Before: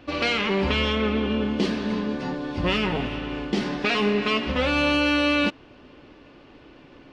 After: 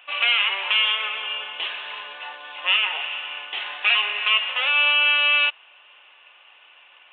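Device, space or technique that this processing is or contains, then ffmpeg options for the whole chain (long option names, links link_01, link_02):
musical greeting card: -af "aresample=8000,aresample=44100,highpass=frequency=800:width=0.5412,highpass=frequency=800:width=1.3066,equalizer=frequency=2800:width_type=o:width=0.55:gain=10.5"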